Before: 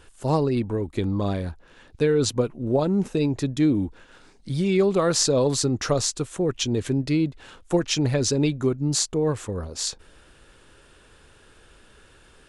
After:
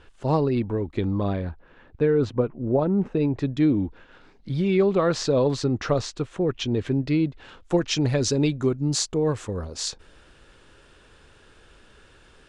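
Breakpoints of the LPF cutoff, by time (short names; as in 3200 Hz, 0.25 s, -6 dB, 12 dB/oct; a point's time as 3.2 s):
0.88 s 3900 Hz
2.02 s 1800 Hz
3.07 s 1800 Hz
3.56 s 3400 Hz
7.01 s 3400 Hz
8.19 s 7200 Hz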